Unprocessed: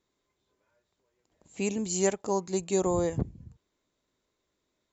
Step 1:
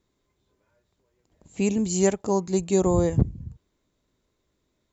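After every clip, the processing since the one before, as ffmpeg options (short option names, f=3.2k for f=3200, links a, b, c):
-af "lowshelf=f=240:g=10.5,volume=2dB"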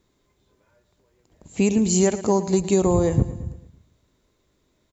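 -af "acompressor=threshold=-21dB:ratio=6,aecho=1:1:112|224|336|448|560:0.188|0.0979|0.0509|0.0265|0.0138,volume=6.5dB"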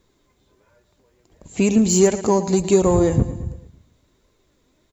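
-filter_complex "[0:a]flanger=delay=1.7:depth=2.6:regen=68:speed=1.4:shape=triangular,asplit=2[a][b];[b]volume=26dB,asoftclip=hard,volume=-26dB,volume=-10dB[c];[a][c]amix=inputs=2:normalize=0,volume=6dB"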